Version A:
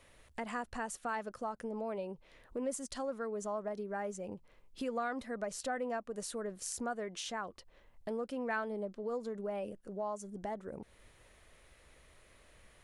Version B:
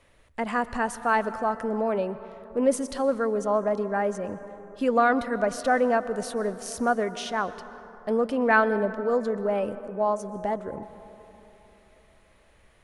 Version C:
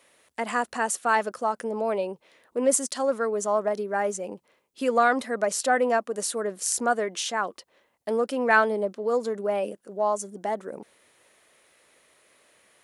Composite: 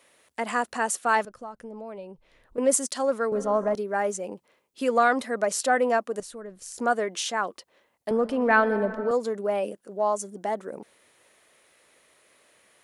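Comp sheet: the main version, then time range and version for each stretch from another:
C
1.25–2.58 from A
3.32–3.75 from B
6.2–6.78 from A
8.11–9.11 from B

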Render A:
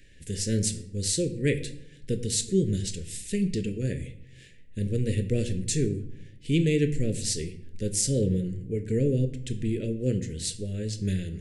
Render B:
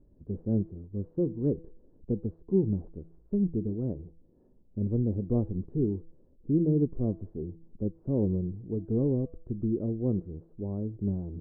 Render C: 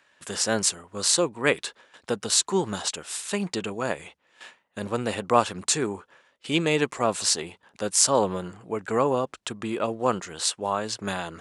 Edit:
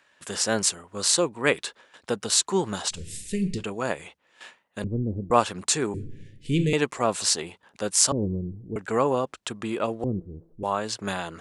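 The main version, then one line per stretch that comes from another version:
C
2.95–3.61 from A, crossfade 0.10 s
4.84–5.31 from B
5.94–6.73 from A
8.12–8.76 from B
10.04–10.63 from B

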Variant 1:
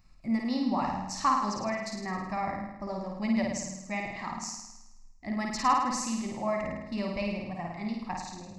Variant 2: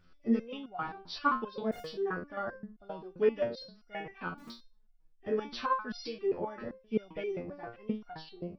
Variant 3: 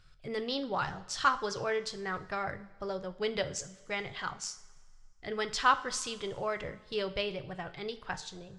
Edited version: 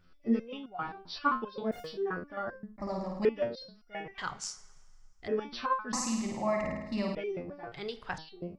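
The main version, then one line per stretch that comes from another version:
2
2.78–3.25 from 1
4.18–5.28 from 3
5.93–7.15 from 1
7.72–8.18 from 3

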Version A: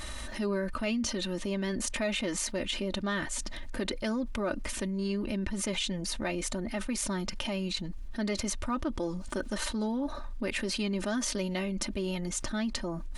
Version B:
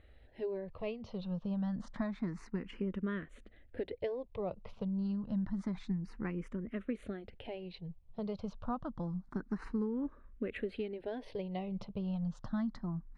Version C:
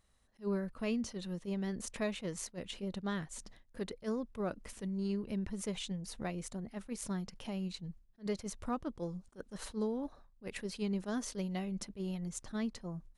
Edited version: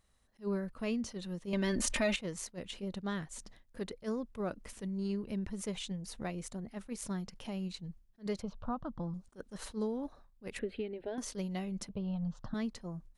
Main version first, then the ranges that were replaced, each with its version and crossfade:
C
1.53–2.16 from A
8.42–9.14 from B
10.59–11.18 from B
11.89–12.54 from B

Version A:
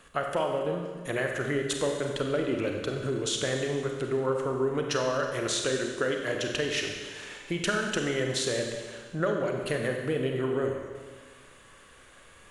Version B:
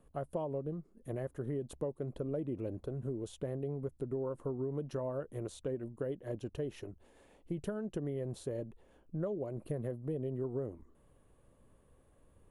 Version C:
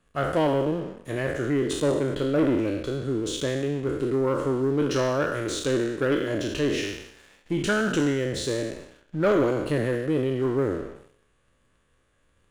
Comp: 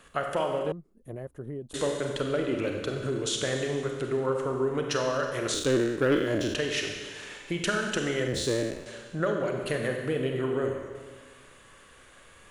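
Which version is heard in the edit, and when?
A
0.72–1.74 from B
5.54–6.55 from C
8.28–8.86 from C

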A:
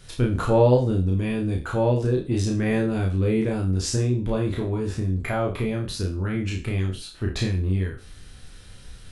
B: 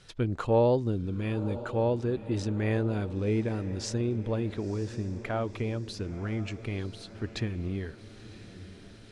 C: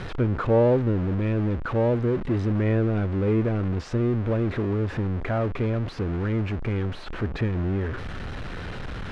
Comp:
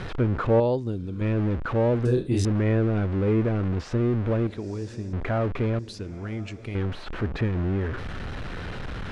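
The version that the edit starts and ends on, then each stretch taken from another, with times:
C
0.6–1.21 from B
2.05–2.45 from A
4.47–5.13 from B
5.79–6.75 from B

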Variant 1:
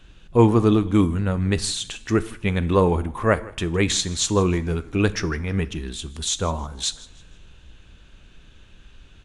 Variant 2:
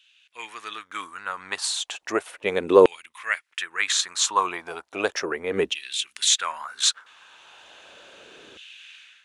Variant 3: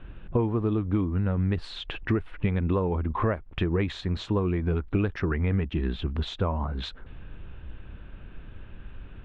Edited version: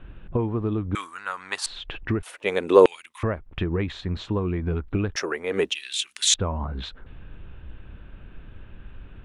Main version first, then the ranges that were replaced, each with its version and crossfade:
3
0.95–1.66 from 2
2.23–3.23 from 2
5.16–6.34 from 2
not used: 1

